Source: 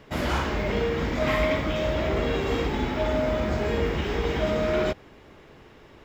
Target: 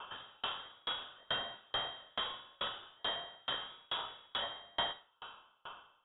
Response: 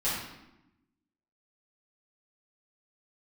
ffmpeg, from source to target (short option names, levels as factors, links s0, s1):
-filter_complex "[0:a]asettb=1/sr,asplit=3[s0][s1][s2];[s0]atrim=end=1.384[s3];[s1]atrim=start=1.38:end=1.82,asetpts=PTS-STARTPTS,afade=t=in:d=0.004:c=qsin,afade=t=out:st=0.436:d=0.004:c=qsin,highpass=f=140:w=0.5412,highpass=f=140:w=1.3066[s4];[s2]atrim=start=1.816[s5];[s3][s4]acrossfade=d=0.004:c1=hsin:c2=qsin[s6];[s6][s5]acrossfade=d=0.004:c1=qsin:c2=hsin,asettb=1/sr,asplit=3[s7][s8][s9];[s7]atrim=end=3.694[s10];[s8]atrim=start=3.69:end=4.42,asetpts=PTS-STARTPTS,afade=t=in:d=0.004:c=qsin,afade=t=out:st=0.726:d=0.004:c=qsin,equalizer=f=390:t=o:w=1.4:g=4[s11];[s9]atrim=start=4.416[s12];[s10][s11]acrossfade=d=0.004:c1=hsin:c2=qsin[s13];[s13][s12]acrossfade=d=0.004:c1=qsin:c2=hsin,acrossover=split=560[s14][s15];[s15]acompressor=threshold=0.00794:ratio=6[s16];[s14][s16]amix=inputs=2:normalize=0,asplit=3[s17][s18][s19];[s17]bandpass=f=730:t=q:w=8,volume=1[s20];[s18]bandpass=f=1090:t=q:w=8,volume=0.501[s21];[s19]bandpass=f=2440:t=q:w=8,volume=0.355[s22];[s20][s21][s22]amix=inputs=3:normalize=0,aeval=exprs='(tanh(200*val(0)+0.15)-tanh(0.15))/200':c=same,aexciter=amount=8.8:drive=8.5:freq=2400,asplit=2[s23][s24];[1:a]atrim=start_sample=2205,highshelf=f=4300:g=9.5[s25];[s24][s25]afir=irnorm=-1:irlink=0,volume=0.211[s26];[s23][s26]amix=inputs=2:normalize=0,lowpass=f=3200:t=q:w=0.5098,lowpass=f=3200:t=q:w=0.6013,lowpass=f=3200:t=q:w=0.9,lowpass=f=3200:t=q:w=2.563,afreqshift=-3800,aeval=exprs='val(0)*pow(10,-36*if(lt(mod(2.3*n/s,1),2*abs(2.3)/1000),1-mod(2.3*n/s,1)/(2*abs(2.3)/1000),(mod(2.3*n/s,1)-2*abs(2.3)/1000)/(1-2*abs(2.3)/1000))/20)':c=same,volume=3.55"